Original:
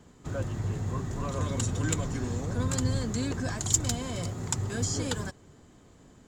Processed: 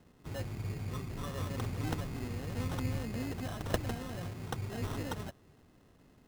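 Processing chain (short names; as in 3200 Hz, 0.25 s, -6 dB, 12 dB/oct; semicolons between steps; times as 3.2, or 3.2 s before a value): sample-and-hold 19×; gain -7 dB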